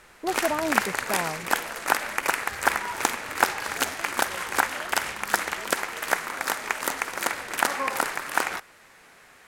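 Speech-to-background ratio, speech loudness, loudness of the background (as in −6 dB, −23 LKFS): −4.0 dB, −31.0 LKFS, −27.0 LKFS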